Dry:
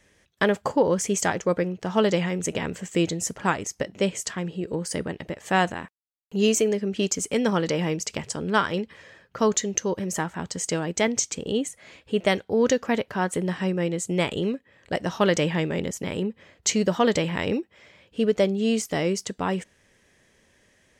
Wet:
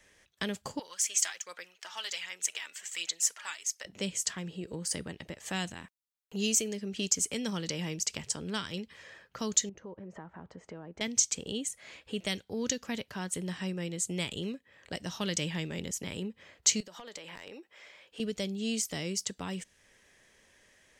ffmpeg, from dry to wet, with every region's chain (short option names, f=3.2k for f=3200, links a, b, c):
-filter_complex "[0:a]asettb=1/sr,asplit=3[a][b][c];[a]atrim=end=0.794[d];[b]atrim=start=0.79:end=3.85,asetpts=PTS-STARTPTS,afade=t=in:d=0.004:c=qsin,afade=t=out:st=3.056:d=0.004:c=qsin,highpass=1.5k,aphaser=in_gain=1:out_gain=1:delay=3.5:decay=0.45:speed=1.3:type=sinusoidal[e];[c]atrim=start=3.846[f];[d][e]acrossfade=d=0.004:c1=hsin:c2=qsin[g];[g][f]acrossfade=d=0.004:c1=qsin:c2=hsin,asettb=1/sr,asplit=3[h][i][j];[h]atrim=end=9.694[k];[i]atrim=start=9.69:end=11.01,asetpts=PTS-STARTPTS,afade=t=in:d=0.004:c=qsin,afade=t=out:st=1.316:d=0.004:c=qsin,lowpass=1.1k,acompressor=threshold=-40dB:ratio=2:attack=3.2:release=140:knee=1:detection=peak[l];[j]atrim=start=11.006[m];[k][l]acrossfade=d=0.004:c1=hsin:c2=qsin[n];[n][m]acrossfade=d=0.004:c1=qsin:c2=hsin,asettb=1/sr,asplit=3[o][p][q];[o]atrim=end=16.804[r];[p]atrim=start=16.8:end=18.2,asetpts=PTS-STARTPTS,afade=t=in:d=0.004:c=qsin,afade=t=out:st=1.396:d=0.004:c=qsin,bass=f=250:g=-14,treble=f=4k:g=1,acompressor=threshold=-37dB:ratio=5:attack=3.2:release=140:knee=1:detection=peak,volume=29.5dB,asoftclip=hard,volume=-29.5dB[s];[q]atrim=start=18.196[t];[r][s]acrossfade=d=0.004:c1=hsin:c2=qsin[u];[u][t]acrossfade=d=0.004:c1=qsin:c2=hsin,equalizer=f=140:w=0.31:g=-8,acrossover=split=260|3000[v][w][x];[w]acompressor=threshold=-47dB:ratio=2.5[y];[v][y][x]amix=inputs=3:normalize=0"